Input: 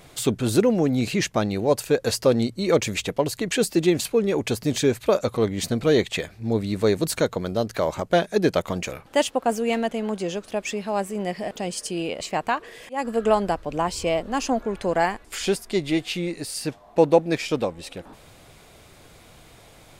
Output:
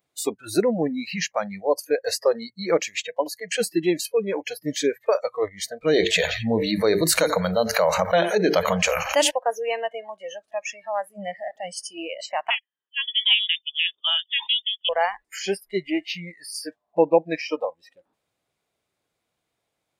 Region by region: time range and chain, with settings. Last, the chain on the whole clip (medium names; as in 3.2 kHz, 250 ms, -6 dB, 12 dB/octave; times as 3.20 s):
5.93–9.31 s: hum notches 50/100/150/200/250/300/350/400/450 Hz + thinning echo 88 ms, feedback 76%, high-pass 680 Hz, level -19.5 dB + level flattener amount 70%
12.50–14.89 s: gate -30 dBFS, range -24 dB + frequency inversion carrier 3.6 kHz
whole clip: spectral noise reduction 28 dB; high-pass 210 Hz 6 dB/octave